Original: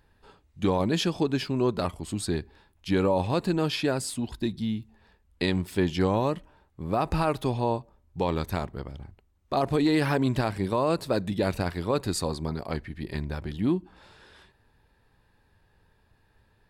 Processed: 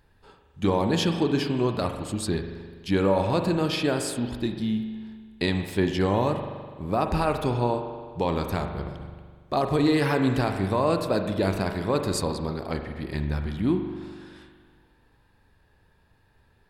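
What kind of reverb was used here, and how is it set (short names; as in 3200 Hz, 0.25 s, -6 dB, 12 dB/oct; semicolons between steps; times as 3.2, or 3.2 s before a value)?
spring tank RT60 1.7 s, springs 41 ms, chirp 40 ms, DRR 5.5 dB; gain +1 dB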